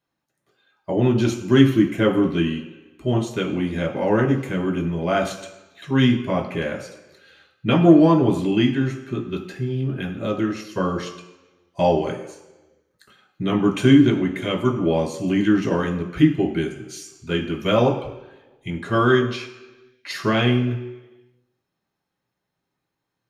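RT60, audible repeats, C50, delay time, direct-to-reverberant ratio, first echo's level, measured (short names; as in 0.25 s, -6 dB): 1.1 s, none, 9.0 dB, none, -0.5 dB, none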